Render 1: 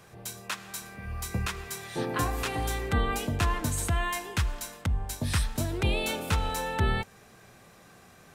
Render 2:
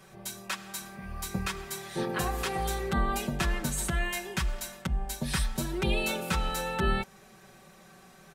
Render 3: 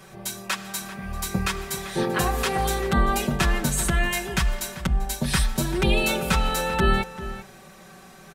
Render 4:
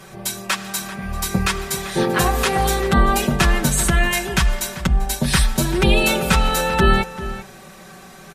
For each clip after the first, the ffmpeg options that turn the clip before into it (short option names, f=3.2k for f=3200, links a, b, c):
-af "aecho=1:1:5.3:0.99,volume=-3dB"
-filter_complex "[0:a]asplit=2[a][b];[b]adelay=390.7,volume=-13dB,highshelf=f=4k:g=-8.79[c];[a][c]amix=inputs=2:normalize=0,volume=7dB"
-af "volume=6dB" -ar 48000 -c:a libmp3lame -b:a 56k